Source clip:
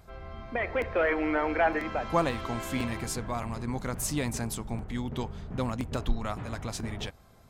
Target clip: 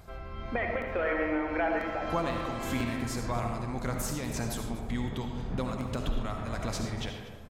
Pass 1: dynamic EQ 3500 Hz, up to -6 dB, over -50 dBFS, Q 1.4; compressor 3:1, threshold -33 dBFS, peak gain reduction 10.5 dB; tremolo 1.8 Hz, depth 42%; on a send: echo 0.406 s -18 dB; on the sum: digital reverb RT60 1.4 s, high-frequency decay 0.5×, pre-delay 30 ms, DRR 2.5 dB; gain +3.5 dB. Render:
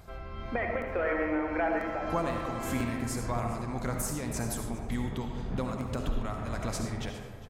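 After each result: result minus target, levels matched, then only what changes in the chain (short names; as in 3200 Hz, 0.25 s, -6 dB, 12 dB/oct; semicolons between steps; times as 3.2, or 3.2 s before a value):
echo 0.165 s late; 4000 Hz band -3.5 dB
change: echo 0.241 s -18 dB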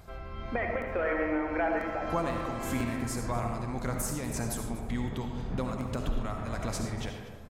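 4000 Hz band -3.5 dB
change: dynamic EQ 9600 Hz, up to -6 dB, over -50 dBFS, Q 1.4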